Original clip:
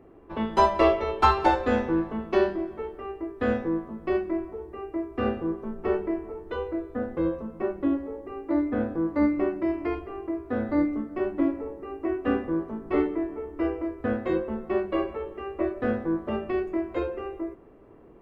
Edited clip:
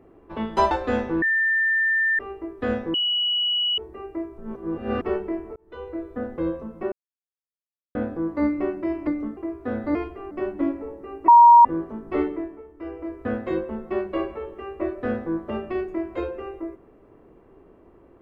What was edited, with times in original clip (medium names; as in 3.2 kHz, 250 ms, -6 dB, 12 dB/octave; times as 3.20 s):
0.71–1.50 s: delete
2.01–2.98 s: bleep 1.79 kHz -18 dBFS
3.73–4.57 s: bleep 2.93 kHz -20 dBFS
5.17–5.81 s: reverse
6.35–6.82 s: fade in
7.71–8.74 s: mute
9.86–10.22 s: swap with 10.80–11.10 s
12.07–12.44 s: bleep 946 Hz -7 dBFS
13.10–13.96 s: dip -9 dB, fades 0.32 s